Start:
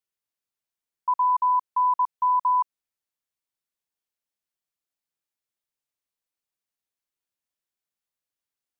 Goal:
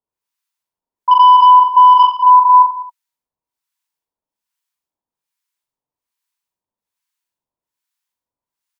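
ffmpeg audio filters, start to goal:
ffmpeg -i in.wav -filter_complex "[0:a]equalizer=frequency=960:width=7:gain=11.5,asettb=1/sr,asplit=3[link_01][link_02][link_03];[link_01]atrim=end=1.114[link_04];[link_02]atrim=start=1.11:end=2.03,asetpts=PTS-STARTPTS,afade=type=in:duration=0.004:curve=qsin,afade=type=out:start_time=0.916:duration=0.004:curve=qsin,acontrast=72[link_05];[link_03]atrim=start=2.026[link_06];[link_04][link_05]acrossfade=duration=0.004:curve1=hsin:curve2=qsin[link_07];[link_07][link_06]acrossfade=duration=0.004:curve1=qsin:curve2=hsin,acrossover=split=1000[link_08][link_09];[link_08]aeval=exprs='val(0)*(1-1/2+1/2*cos(2*PI*1.2*n/s))':channel_layout=same[link_10];[link_09]aeval=exprs='val(0)*(1-1/2-1/2*cos(2*PI*1.2*n/s))':channel_layout=same[link_11];[link_10][link_11]amix=inputs=2:normalize=0,aecho=1:1:40|86|138.9|199.7|269.7:0.631|0.398|0.251|0.158|0.1,alimiter=level_in=8.5dB:limit=-1dB:release=50:level=0:latency=1,volume=-1dB" out.wav

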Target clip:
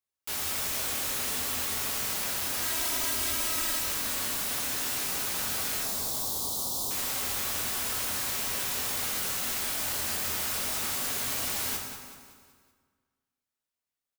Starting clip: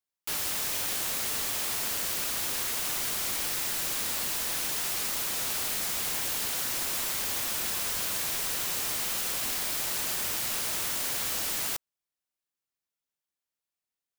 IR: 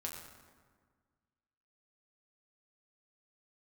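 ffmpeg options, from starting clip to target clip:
-filter_complex "[0:a]asettb=1/sr,asplit=3[link_01][link_02][link_03];[link_01]atrim=end=2.624[link_04];[link_02]atrim=start=2.62:end=3.79,asetpts=PTS-STARTPTS,afade=type=in:duration=0.004:curve=qsin,afade=type=out:start_time=1.166:duration=0.004:curve=qsin,aecho=1:1:3.1:0.73,atrim=end_sample=51597[link_05];[link_03]atrim=start=3.786[link_06];[link_04][link_05]acrossfade=duration=0.004:curve1=hsin:curve2=qsin[link_07];[link_07][link_06]acrossfade=duration=0.004:curve1=qsin:curve2=hsin,asettb=1/sr,asplit=3[link_08][link_09][link_10];[link_08]atrim=end=5.834[link_11];[link_09]atrim=start=5.83:end=6.91,asetpts=PTS-STARTPTS,afade=type=in:duration=0.004:curve=qsin,afade=type=out:start_time=1.076:duration=0.004:curve=qsin,asuperstop=centerf=2000:order=8:qfactor=0.85[link_12];[link_10]atrim=start=6.906[link_13];[link_11][link_12]acrossfade=duration=0.004:curve1=hsin:curve2=qsin[link_14];[link_14][link_13]acrossfade=duration=0.004:curve1=qsin:curve2=hsin,aecho=1:1:189|378|567|756|945:0.282|0.132|0.0623|0.0293|0.0138[link_15];[1:a]atrim=start_sample=2205[link_16];[link_15][link_16]afir=irnorm=-1:irlink=0,volume=1dB"

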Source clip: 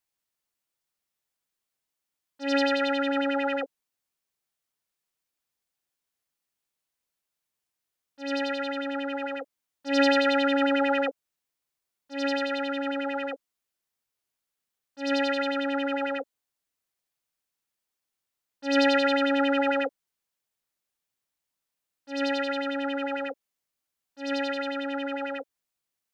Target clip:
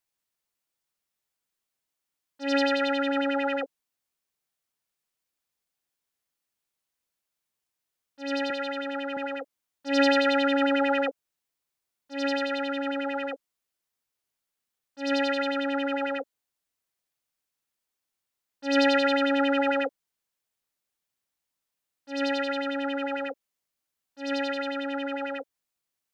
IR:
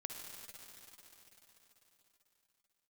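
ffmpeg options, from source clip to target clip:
-filter_complex "[0:a]asettb=1/sr,asplit=3[link_01][link_02][link_03];[link_01]atrim=end=8.504[link_04];[link_02]atrim=start=8.5:end=9.17,asetpts=PTS-STARTPTS,afade=type=in:duration=0.004:curve=qsin,afade=type=out:start_time=0.666:duration=0.004:curve=qsin,highpass=270[link_05];[link_03]atrim=start=9.166[link_06];[link_04][link_05]acrossfade=duration=0.004:curve1=hsin:curve2=qsin[link_07];[link_07][link_06]acrossfade=duration=0.004:curve1=qsin:curve2=hsin"

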